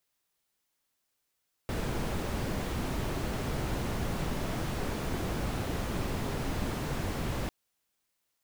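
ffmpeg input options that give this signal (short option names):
-f lavfi -i "anoisesrc=c=brown:a=0.117:d=5.8:r=44100:seed=1"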